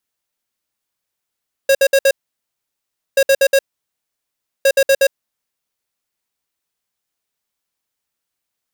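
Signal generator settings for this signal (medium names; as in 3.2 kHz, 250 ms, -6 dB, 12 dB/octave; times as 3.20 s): beep pattern square 545 Hz, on 0.06 s, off 0.06 s, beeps 4, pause 1.06 s, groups 3, -11 dBFS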